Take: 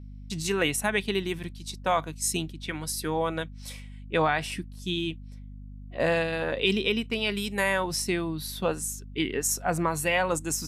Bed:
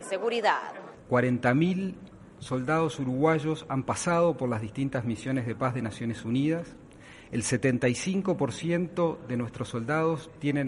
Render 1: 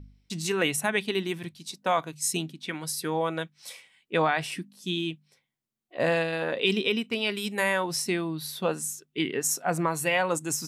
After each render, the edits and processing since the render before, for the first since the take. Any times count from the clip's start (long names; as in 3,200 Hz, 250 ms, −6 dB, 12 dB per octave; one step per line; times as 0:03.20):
hum removal 50 Hz, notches 5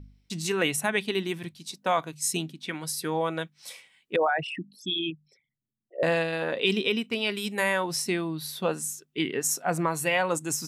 0:04.16–0:06.03: spectral envelope exaggerated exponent 3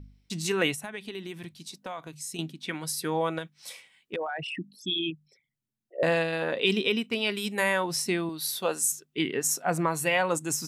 0:00.74–0:02.39: downward compressor 3 to 1, threshold −37 dBFS
0:03.38–0:04.54: downward compressor, threshold −29 dBFS
0:08.29–0:08.92: bass and treble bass −12 dB, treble +7 dB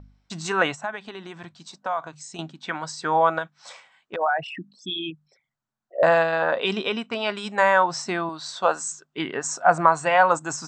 Chebyshev low-pass filter 8,200 Hz, order 10
flat-topped bell 970 Hz +12.5 dB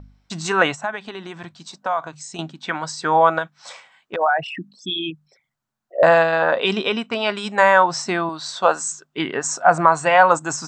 level +4.5 dB
brickwall limiter −1 dBFS, peak gain reduction 2.5 dB